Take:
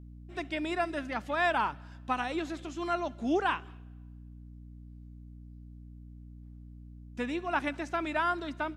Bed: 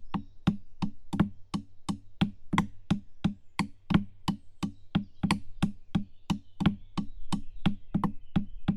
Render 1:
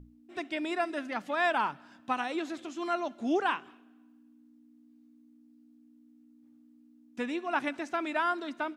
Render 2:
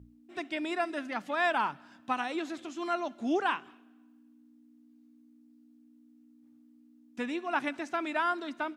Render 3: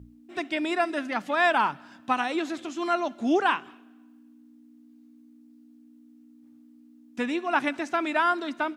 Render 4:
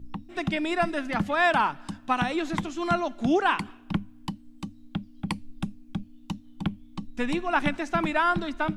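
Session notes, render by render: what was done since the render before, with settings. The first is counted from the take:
mains-hum notches 60/120/180 Hz
high-pass filter 53 Hz; parametric band 480 Hz −2 dB
level +6 dB
mix in bed −3.5 dB

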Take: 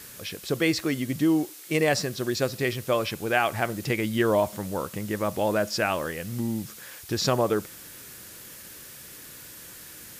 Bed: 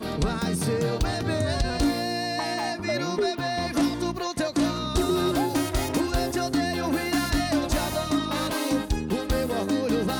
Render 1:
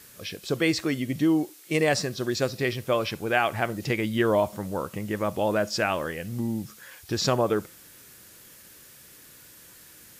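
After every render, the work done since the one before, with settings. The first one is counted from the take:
noise reduction from a noise print 6 dB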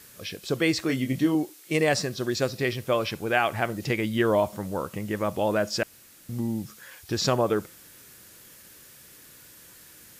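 0:00.87–0:01.35: double-tracking delay 23 ms −5.5 dB
0:05.83–0:06.29: fill with room tone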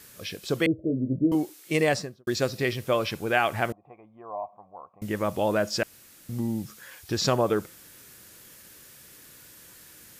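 0:00.66–0:01.32: Butterworth low-pass 640 Hz 96 dB per octave
0:01.85–0:02.27: fade out and dull
0:03.72–0:05.02: formant resonators in series a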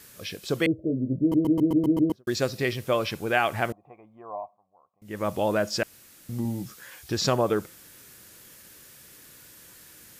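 0:01.21: stutter in place 0.13 s, 7 plays
0:04.35–0:05.27: duck −17 dB, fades 0.23 s
0:06.43–0:07.09: double-tracking delay 16 ms −6 dB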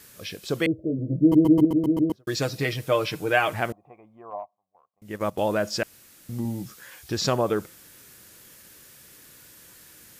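0:00.98–0:01.65: comb filter 6.2 ms, depth 91%
0:02.19–0:03.54: comb filter 6.5 ms
0:04.30–0:05.49: transient designer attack +2 dB, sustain −12 dB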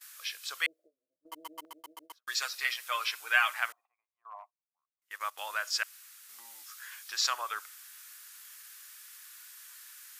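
Chebyshev high-pass filter 1,200 Hz, order 3
noise gate −54 dBFS, range −21 dB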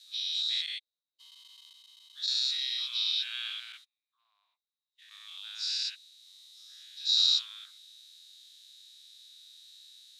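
every bin's largest magnitude spread in time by 240 ms
four-pole ladder band-pass 3,900 Hz, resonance 90%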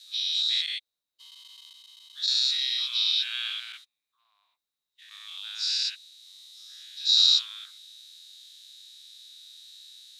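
level +5 dB

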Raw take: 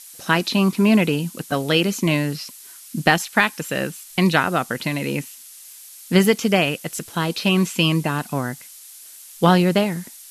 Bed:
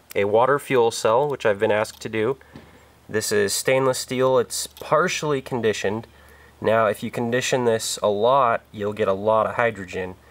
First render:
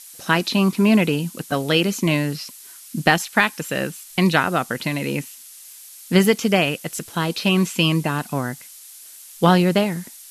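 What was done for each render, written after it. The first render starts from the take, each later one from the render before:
no processing that can be heard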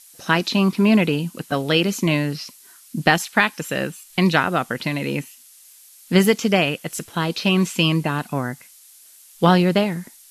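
noise reduction from a noise print 6 dB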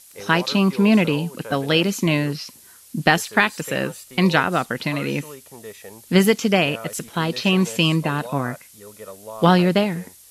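mix in bed −17 dB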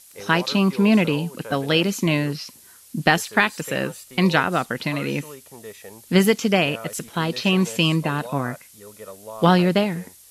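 level −1 dB

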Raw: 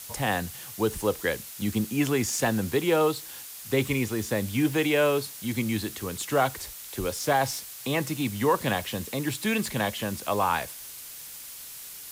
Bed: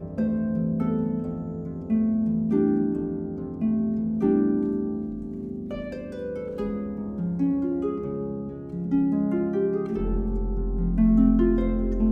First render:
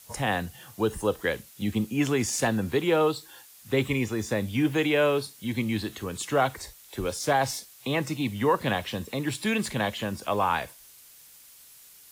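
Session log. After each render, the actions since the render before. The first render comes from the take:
noise reduction from a noise print 10 dB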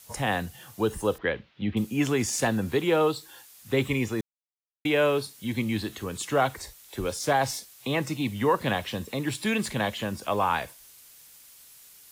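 0:01.18–0:01.77: inverse Chebyshev low-pass filter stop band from 8,100 Hz, stop band 50 dB
0:04.21–0:04.85: silence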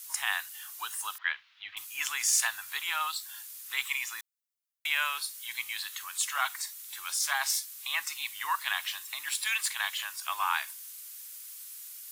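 inverse Chebyshev high-pass filter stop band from 530 Hz, stop band 40 dB
high-shelf EQ 6,500 Hz +9 dB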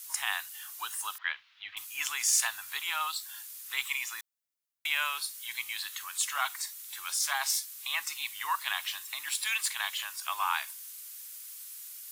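dynamic equaliser 1,700 Hz, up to −3 dB, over −40 dBFS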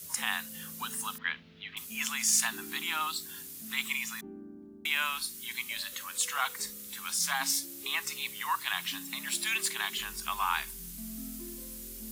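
mix in bed −25 dB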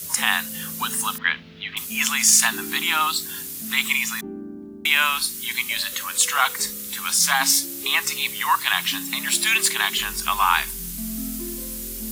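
level +11.5 dB
brickwall limiter −3 dBFS, peak gain reduction 2.5 dB

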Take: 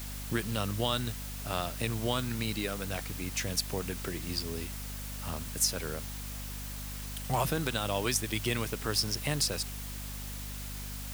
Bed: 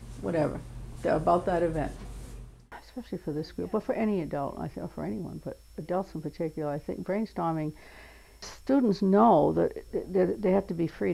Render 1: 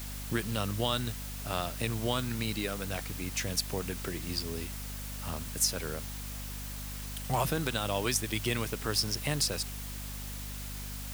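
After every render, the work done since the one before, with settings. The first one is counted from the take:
no processing that can be heard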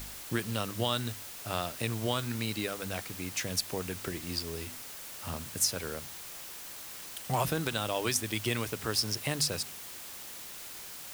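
hum removal 50 Hz, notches 5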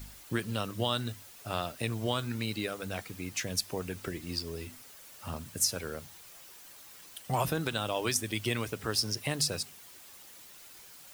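broadband denoise 9 dB, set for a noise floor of −45 dBFS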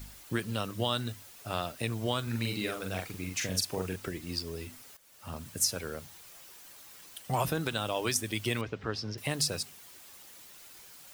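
0:02.23–0:03.96: double-tracking delay 43 ms −4 dB
0:04.97–0:05.46: fade in, from −14.5 dB
0:08.61–0:09.18: high-frequency loss of the air 200 metres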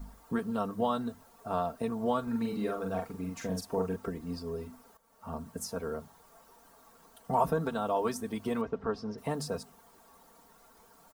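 high shelf with overshoot 1,600 Hz −14 dB, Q 1.5
comb filter 4.4 ms, depth 77%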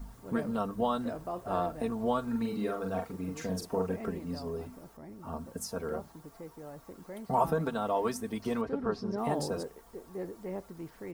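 mix in bed −14 dB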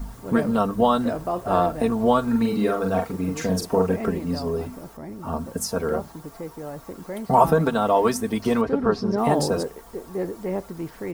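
level +11 dB

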